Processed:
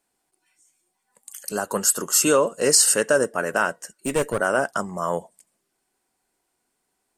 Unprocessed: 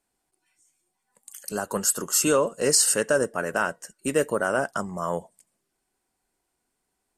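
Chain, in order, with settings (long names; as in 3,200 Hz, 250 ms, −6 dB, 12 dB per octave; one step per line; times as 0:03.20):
low-shelf EQ 120 Hz −9 dB
0:03.95–0:04.40: asymmetric clip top −27.5 dBFS
level +3.5 dB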